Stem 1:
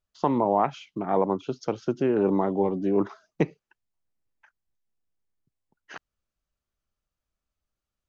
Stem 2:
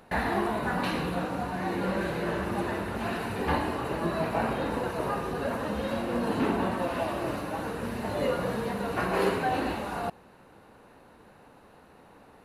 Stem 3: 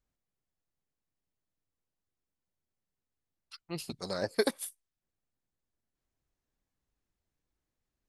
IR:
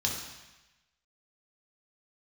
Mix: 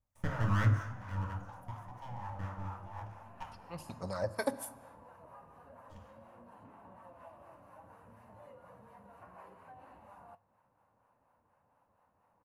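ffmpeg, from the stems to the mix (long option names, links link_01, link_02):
-filter_complex "[0:a]agate=range=-33dB:threshold=-56dB:ratio=3:detection=peak,highpass=frequency=440:width=0.5412,highpass=frequency=440:width=1.3066,aeval=exprs='abs(val(0))':channel_layout=same,volume=-11.5dB,afade=type=out:start_time=0.67:duration=0.2:silence=0.398107,asplit=2[link_01][link_02];[link_02]volume=-3.5dB[link_03];[1:a]bandreject=frequency=50:width_type=h:width=6,bandreject=frequency=100:width_type=h:width=6,acompressor=threshold=-35dB:ratio=3,flanger=delay=9:depth=3.7:regen=-62:speed=0.49:shape=triangular,adelay=250,volume=-17dB[link_04];[2:a]aphaser=in_gain=1:out_gain=1:delay=3.5:decay=0.39:speed=1:type=sinusoidal,volume=-5.5dB,asplit=2[link_05][link_06];[link_06]volume=-17dB[link_07];[3:a]atrim=start_sample=2205[link_08];[link_03][link_07]amix=inputs=2:normalize=0[link_09];[link_09][link_08]afir=irnorm=-1:irlink=0[link_10];[link_01][link_04][link_05][link_10]amix=inputs=4:normalize=0,equalizer=frequency=570:width_type=o:width=0.7:gain=7.5,acrossover=split=560[link_11][link_12];[link_11]aeval=exprs='val(0)*(1-0.5/2+0.5/2*cos(2*PI*4.2*n/s))':channel_layout=same[link_13];[link_12]aeval=exprs='val(0)*(1-0.5/2-0.5/2*cos(2*PI*4.2*n/s))':channel_layout=same[link_14];[link_13][link_14]amix=inputs=2:normalize=0,equalizer=frequency=100:width_type=o:width=0.67:gain=10,equalizer=frequency=400:width_type=o:width=0.67:gain=-9,equalizer=frequency=1000:width_type=o:width=0.67:gain=10,equalizer=frequency=4000:width_type=o:width=0.67:gain=-11"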